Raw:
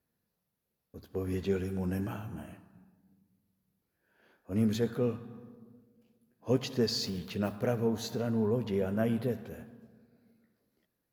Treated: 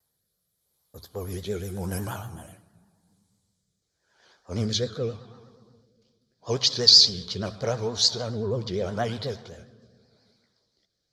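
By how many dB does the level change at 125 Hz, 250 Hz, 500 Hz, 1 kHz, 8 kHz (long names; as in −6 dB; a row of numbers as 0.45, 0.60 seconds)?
+3.0, −3.0, +2.0, +6.5, +15.5 decibels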